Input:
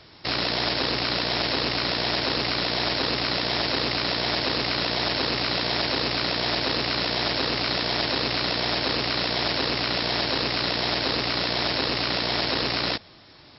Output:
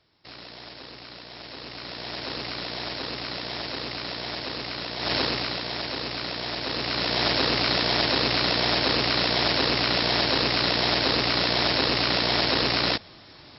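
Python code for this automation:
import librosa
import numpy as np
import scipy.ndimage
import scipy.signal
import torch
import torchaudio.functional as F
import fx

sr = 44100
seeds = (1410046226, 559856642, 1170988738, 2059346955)

y = fx.gain(x, sr, db=fx.line((1.3, -17.5), (2.32, -7.5), (4.97, -7.5), (5.14, 1.5), (5.62, -6.0), (6.56, -6.0), (7.26, 2.0)))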